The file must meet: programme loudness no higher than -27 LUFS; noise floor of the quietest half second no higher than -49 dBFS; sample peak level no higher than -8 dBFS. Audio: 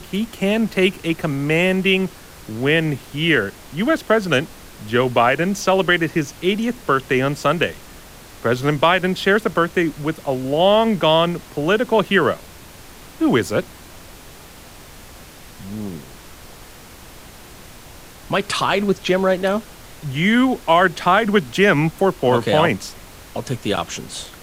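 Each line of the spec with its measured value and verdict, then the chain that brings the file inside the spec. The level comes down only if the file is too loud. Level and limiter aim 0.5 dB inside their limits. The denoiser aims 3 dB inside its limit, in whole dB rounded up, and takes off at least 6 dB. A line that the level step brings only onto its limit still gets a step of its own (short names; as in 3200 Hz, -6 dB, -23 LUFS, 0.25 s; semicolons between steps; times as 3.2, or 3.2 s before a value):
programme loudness -18.5 LUFS: fail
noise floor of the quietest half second -41 dBFS: fail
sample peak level -3.0 dBFS: fail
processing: gain -9 dB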